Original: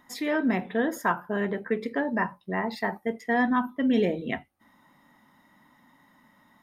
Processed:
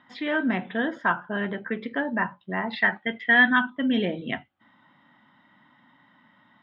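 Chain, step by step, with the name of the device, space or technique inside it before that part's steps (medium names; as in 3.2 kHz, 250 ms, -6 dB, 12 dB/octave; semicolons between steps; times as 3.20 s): 2.73–3.70 s: high-order bell 2.4 kHz +9.5 dB; guitar cabinet (cabinet simulation 100–3700 Hz, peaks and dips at 120 Hz +5 dB, 440 Hz -6 dB, 1.5 kHz +6 dB, 3.2 kHz +9 dB)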